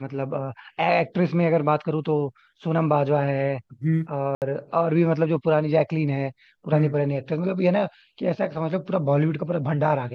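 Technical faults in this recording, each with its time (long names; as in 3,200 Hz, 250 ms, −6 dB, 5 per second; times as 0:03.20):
0:04.35–0:04.42: drop-out 68 ms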